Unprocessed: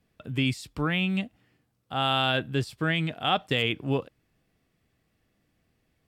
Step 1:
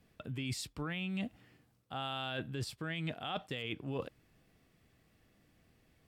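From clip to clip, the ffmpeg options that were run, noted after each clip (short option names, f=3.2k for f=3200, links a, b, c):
-af "alimiter=limit=-21.5dB:level=0:latency=1:release=105,areverse,acompressor=threshold=-38dB:ratio=12,areverse,volume=3dB"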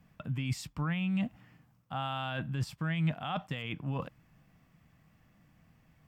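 -af "equalizer=f=160:t=o:w=0.67:g=8,equalizer=f=400:t=o:w=0.67:g=-10,equalizer=f=1k:t=o:w=0.67:g=5,equalizer=f=4k:t=o:w=0.67:g=-7,equalizer=f=10k:t=o:w=0.67:g=-8,volume=3dB"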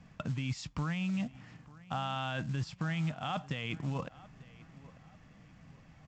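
-filter_complex "[0:a]acompressor=threshold=-41dB:ratio=3,asplit=2[a][b];[b]adelay=893,lowpass=f=2.5k:p=1,volume=-19.5dB,asplit=2[c][d];[d]adelay=893,lowpass=f=2.5k:p=1,volume=0.41,asplit=2[e][f];[f]adelay=893,lowpass=f=2.5k:p=1,volume=0.41[g];[a][c][e][g]amix=inputs=4:normalize=0,aresample=16000,acrusher=bits=6:mode=log:mix=0:aa=0.000001,aresample=44100,volume=6.5dB"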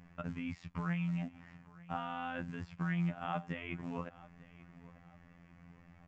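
-filter_complex "[0:a]acrossover=split=3200[a][b];[b]acompressor=threshold=-56dB:ratio=4:attack=1:release=60[c];[a][c]amix=inputs=2:normalize=0,afftfilt=real='hypot(re,im)*cos(PI*b)':imag='0':win_size=2048:overlap=0.75,highshelf=f=2.8k:t=q:w=1.5:g=-6.5,volume=1dB"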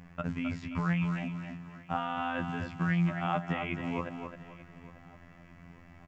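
-af "aecho=1:1:264|528|792:0.447|0.125|0.035,volume=6.5dB"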